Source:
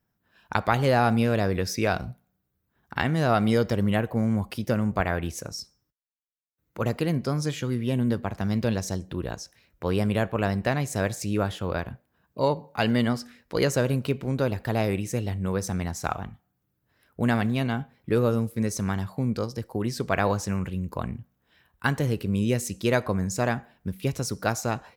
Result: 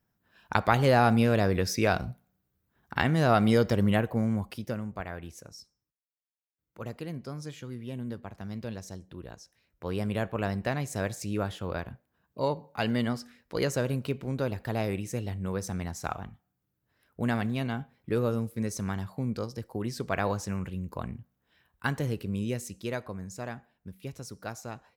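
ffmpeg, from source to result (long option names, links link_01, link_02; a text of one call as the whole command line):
ffmpeg -i in.wav -af "volume=6.5dB,afade=type=out:start_time=3.9:duration=1:silence=0.266073,afade=type=in:start_time=9.4:duration=0.87:silence=0.446684,afade=type=out:start_time=22.07:duration=1.04:silence=0.421697" out.wav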